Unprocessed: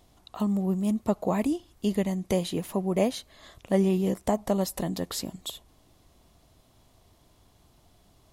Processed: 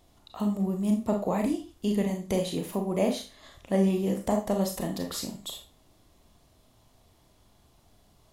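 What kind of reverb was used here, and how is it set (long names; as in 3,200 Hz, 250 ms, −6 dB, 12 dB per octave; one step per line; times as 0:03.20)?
four-comb reverb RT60 0.32 s, combs from 27 ms, DRR 3 dB
level −2.5 dB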